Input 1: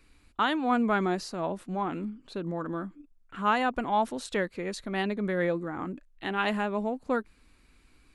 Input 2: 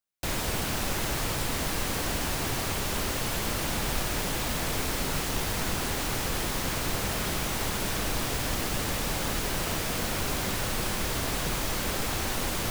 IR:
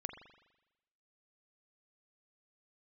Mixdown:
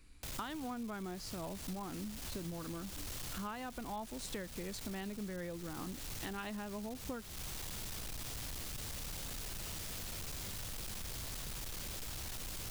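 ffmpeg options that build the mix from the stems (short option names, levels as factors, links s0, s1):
-filter_complex "[0:a]bass=f=250:g=7,treble=f=4000:g=7,volume=0.531[s0];[1:a]acrossover=split=140|3000[s1][s2][s3];[s2]acompressor=threshold=0.00708:ratio=3[s4];[s1][s4][s3]amix=inputs=3:normalize=0,volume=50.1,asoftclip=hard,volume=0.02,volume=0.473[s5];[s0][s5]amix=inputs=2:normalize=0,acompressor=threshold=0.0112:ratio=10"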